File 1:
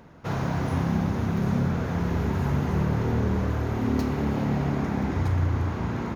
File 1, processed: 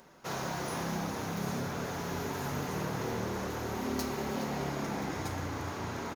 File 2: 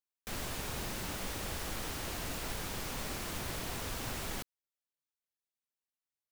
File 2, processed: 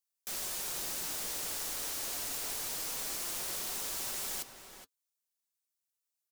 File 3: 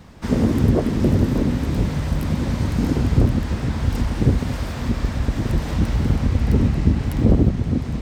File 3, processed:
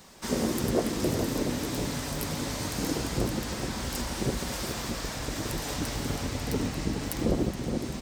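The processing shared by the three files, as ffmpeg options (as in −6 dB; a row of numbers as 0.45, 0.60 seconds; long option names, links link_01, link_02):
-filter_complex "[0:a]flanger=delay=5.2:depth=1.9:regen=-52:speed=0.25:shape=sinusoidal,bass=frequency=250:gain=-12,treble=frequency=4000:gain=12,asplit=2[link_01][link_02];[link_02]adelay=419.8,volume=-8dB,highshelf=frequency=4000:gain=-9.45[link_03];[link_01][link_03]amix=inputs=2:normalize=0"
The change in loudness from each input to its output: −9.5, +4.0, −10.0 LU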